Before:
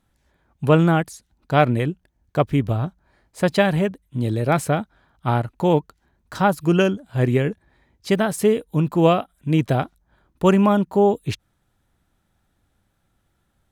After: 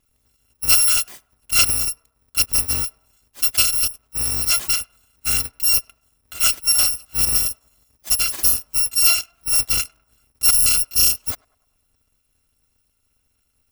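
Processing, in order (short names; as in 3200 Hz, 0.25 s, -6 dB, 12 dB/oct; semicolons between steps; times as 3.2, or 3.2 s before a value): FFT order left unsorted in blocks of 256 samples; narrowing echo 0.1 s, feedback 55%, band-pass 850 Hz, level -23.5 dB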